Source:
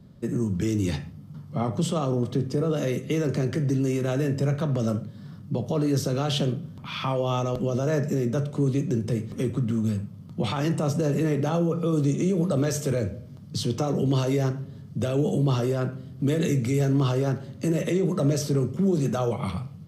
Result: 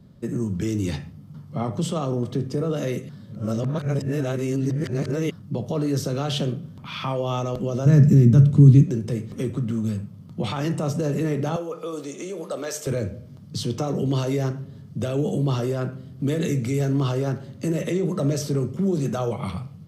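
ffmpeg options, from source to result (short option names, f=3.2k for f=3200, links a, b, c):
-filter_complex "[0:a]asplit=3[a][b][c];[a]afade=t=out:st=7.85:d=0.02[d];[b]asubboost=boost=8.5:cutoff=200,afade=t=in:st=7.85:d=0.02,afade=t=out:st=8.83:d=0.02[e];[c]afade=t=in:st=8.83:d=0.02[f];[d][e][f]amix=inputs=3:normalize=0,asettb=1/sr,asplit=3[g][h][i];[g]atrim=end=11.564[j];[h]atrim=start=11.56:end=12.87,asetpts=PTS-STARTPTS,afade=t=in:d=0.004:c=qsin,afade=t=out:st=1.306:d=0.004:c=qsin,highpass=490[k];[i]atrim=start=12.866[l];[j][k]acrossfade=d=0.004:c1=hsin:c2=qsin[m];[m][l]acrossfade=d=0.004:c1=qsin:c2=hsin,asplit=3[n][o][p];[n]atrim=end=3.092[q];[o]atrim=start=3.088:end=5.312,asetpts=PTS-STARTPTS,areverse[r];[p]atrim=start=5.308[s];[q][r]acrossfade=d=0.004:c1=hsin:c2=hsin[t];[t][s]acrossfade=d=0.004:c1=hsin:c2=hsin"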